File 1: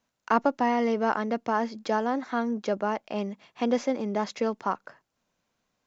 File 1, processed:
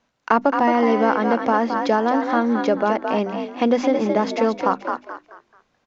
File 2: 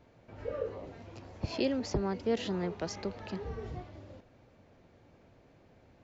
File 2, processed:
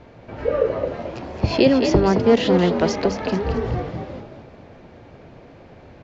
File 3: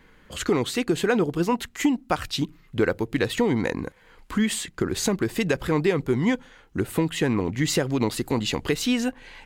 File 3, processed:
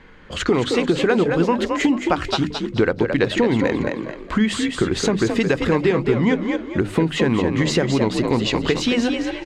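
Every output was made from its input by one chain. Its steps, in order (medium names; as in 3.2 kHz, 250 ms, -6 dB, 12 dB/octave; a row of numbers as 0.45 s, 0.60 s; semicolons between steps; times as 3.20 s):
hum notches 50/100/150/200/250/300 Hz; on a send: frequency-shifting echo 218 ms, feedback 32%, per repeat +50 Hz, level -7 dB; on the sum: compression 2:1, threshold -25 dBFS; distance through air 100 m; normalise loudness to -20 LUFS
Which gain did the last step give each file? +10.5 dB, +16.5 dB, +8.5 dB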